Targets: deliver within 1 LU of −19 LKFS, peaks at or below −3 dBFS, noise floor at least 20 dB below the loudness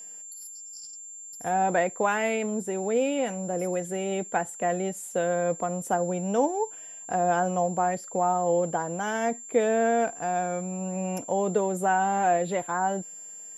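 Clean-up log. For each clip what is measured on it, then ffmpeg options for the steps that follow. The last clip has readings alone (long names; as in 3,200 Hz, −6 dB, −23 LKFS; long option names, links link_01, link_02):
interfering tone 7,300 Hz; level of the tone −40 dBFS; integrated loudness −27.0 LKFS; sample peak −11.0 dBFS; target loudness −19.0 LKFS
→ -af "bandreject=frequency=7300:width=30"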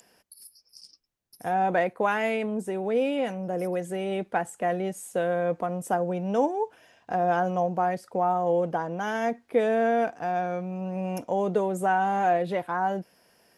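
interfering tone none found; integrated loudness −27.0 LKFS; sample peak −11.5 dBFS; target loudness −19.0 LKFS
→ -af "volume=8dB"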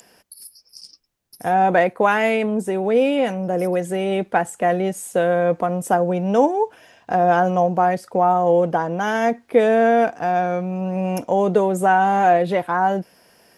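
integrated loudness −19.0 LKFS; sample peak −3.5 dBFS; background noise floor −56 dBFS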